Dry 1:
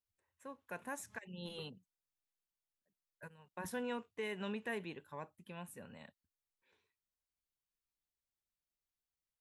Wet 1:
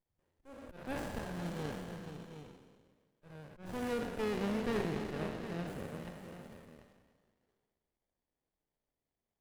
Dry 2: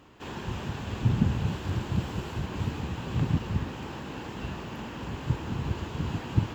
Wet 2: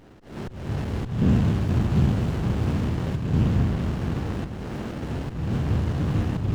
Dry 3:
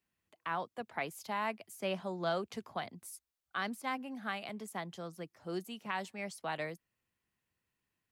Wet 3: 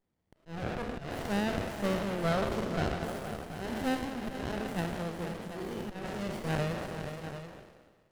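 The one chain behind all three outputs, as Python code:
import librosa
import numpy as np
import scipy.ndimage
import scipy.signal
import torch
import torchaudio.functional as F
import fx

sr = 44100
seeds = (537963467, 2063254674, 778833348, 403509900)

p1 = fx.spec_trails(x, sr, decay_s=1.53)
p2 = 10.0 ** (-22.5 / 20.0) * np.tanh(p1 / 10.0 ** (-22.5 / 20.0))
p3 = p1 + (p2 * 10.0 ** (-4.0 / 20.0))
p4 = fx.auto_swell(p3, sr, attack_ms=264.0)
p5 = fx.echo_multitap(p4, sr, ms=(368, 473, 738), db=(-18.5, -9.0, -10.5))
y = fx.running_max(p5, sr, window=33)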